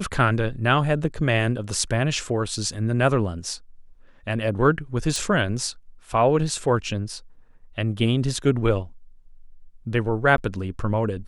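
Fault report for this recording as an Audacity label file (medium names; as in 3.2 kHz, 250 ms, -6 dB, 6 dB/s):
5.160000	5.160000	pop
10.370000	10.380000	dropout 12 ms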